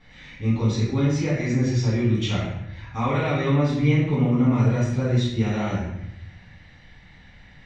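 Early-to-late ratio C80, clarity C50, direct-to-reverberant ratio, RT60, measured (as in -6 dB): 4.5 dB, 1.0 dB, -9.5 dB, 0.80 s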